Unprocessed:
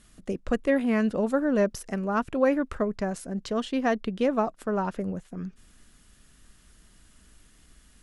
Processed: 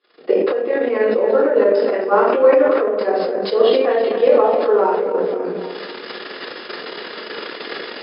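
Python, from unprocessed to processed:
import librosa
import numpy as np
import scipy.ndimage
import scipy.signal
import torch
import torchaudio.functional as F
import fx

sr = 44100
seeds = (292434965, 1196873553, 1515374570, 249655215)

y = fx.recorder_agc(x, sr, target_db=-14.5, rise_db_per_s=39.0, max_gain_db=30)
y = fx.brickwall_lowpass(y, sr, high_hz=5200.0)
y = fx.echo_feedback(y, sr, ms=262, feedback_pct=54, wet_db=-11)
y = fx.room_shoebox(y, sr, seeds[0], volume_m3=82.0, walls='mixed', distance_m=3.3)
y = fx.transient(y, sr, attack_db=7, sustain_db=-7)
y = fx.ladder_highpass(y, sr, hz=400.0, resonance_pct=60)
y = fx.sustainer(y, sr, db_per_s=24.0)
y = y * 10.0 ** (-1.5 / 20.0)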